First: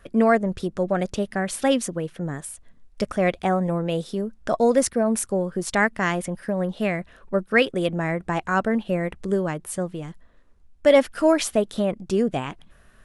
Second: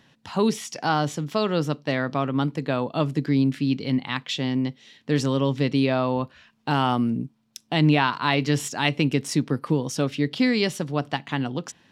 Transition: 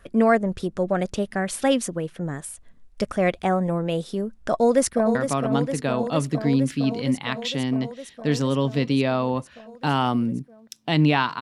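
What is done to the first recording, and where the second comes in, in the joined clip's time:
first
0:04.50–0:05.15: delay throw 460 ms, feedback 80%, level −8 dB
0:05.15: continue with second from 0:01.99

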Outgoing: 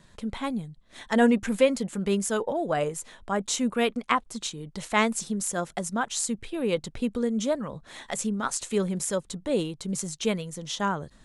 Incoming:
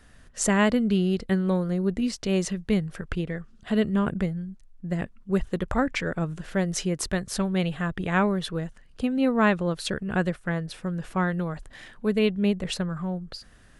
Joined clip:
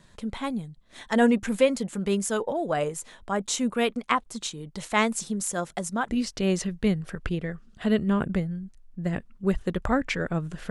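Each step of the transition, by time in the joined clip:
outgoing
0:06.09: continue with incoming from 0:01.95

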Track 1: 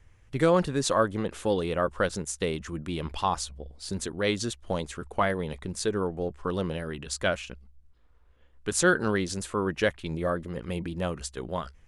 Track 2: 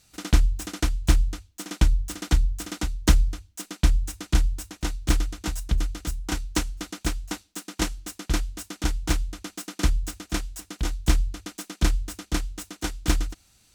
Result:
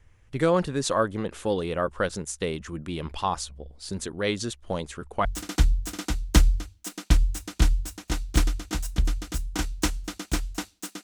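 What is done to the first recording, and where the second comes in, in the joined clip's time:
track 1
0:05.25: continue with track 2 from 0:01.98

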